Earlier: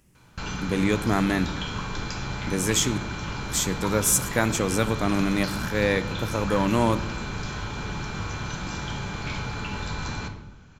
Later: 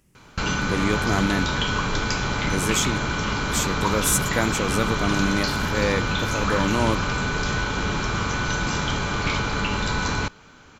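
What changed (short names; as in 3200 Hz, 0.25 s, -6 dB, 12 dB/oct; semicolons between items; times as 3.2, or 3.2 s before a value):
background +11.5 dB; reverb: off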